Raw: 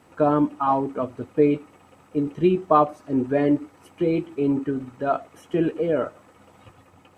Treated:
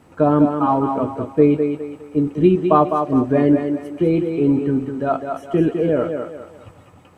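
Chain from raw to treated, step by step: low shelf 350 Hz +7.5 dB; on a send: thinning echo 0.205 s, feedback 37%, high-pass 210 Hz, level -5.5 dB; on the sum: gain +1 dB

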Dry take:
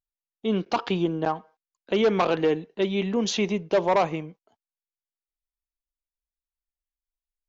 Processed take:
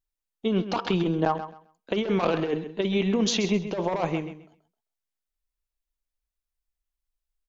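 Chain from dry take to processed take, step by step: low shelf 65 Hz +9 dB; negative-ratio compressor -23 dBFS, ratio -0.5; feedback echo 0.131 s, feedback 21%, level -11.5 dB

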